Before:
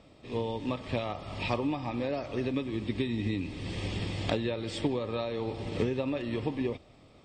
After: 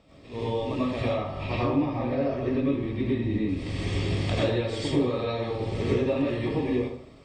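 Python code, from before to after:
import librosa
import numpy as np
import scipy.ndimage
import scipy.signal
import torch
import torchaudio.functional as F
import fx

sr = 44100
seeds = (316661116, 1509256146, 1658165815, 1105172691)

y = fx.lowpass(x, sr, hz=fx.line((1.02, 2700.0), (3.47, 1400.0)), slope=6, at=(1.02, 3.47), fade=0.02)
y = fx.rev_plate(y, sr, seeds[0], rt60_s=0.61, hf_ratio=0.65, predelay_ms=75, drr_db=-8.0)
y = y * 10.0 ** (-3.5 / 20.0)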